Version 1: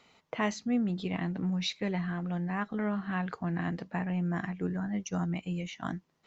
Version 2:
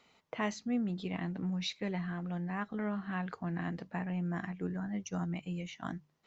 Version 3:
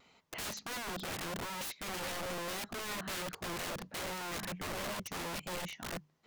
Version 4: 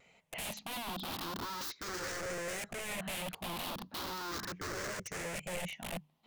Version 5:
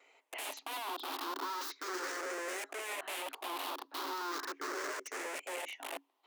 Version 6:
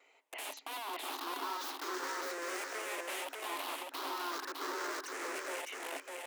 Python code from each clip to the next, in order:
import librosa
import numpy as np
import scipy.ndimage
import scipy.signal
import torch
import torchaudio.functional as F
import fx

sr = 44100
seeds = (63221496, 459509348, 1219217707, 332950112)

y1 = fx.hum_notches(x, sr, base_hz=50, count=3)
y1 = F.gain(torch.from_numpy(y1), -4.0).numpy()
y2 = (np.mod(10.0 ** (37.0 / 20.0) * y1 + 1.0, 2.0) - 1.0) / 10.0 ** (37.0 / 20.0)
y2 = fx.vibrato(y2, sr, rate_hz=1.5, depth_cents=32.0)
y2 = F.gain(torch.from_numpy(y2), 2.0).numpy()
y3 = fx.spec_ripple(y2, sr, per_octave=0.51, drift_hz=0.37, depth_db=10)
y3 = F.gain(torch.from_numpy(y3), -1.5).numpy()
y4 = scipy.signal.sosfilt(scipy.signal.cheby1(6, 6, 270.0, 'highpass', fs=sr, output='sos'), y3)
y4 = F.gain(torch.from_numpy(y4), 4.0).numpy()
y5 = fx.echo_feedback(y4, sr, ms=606, feedback_pct=18, wet_db=-3)
y5 = F.gain(torch.from_numpy(y5), -1.5).numpy()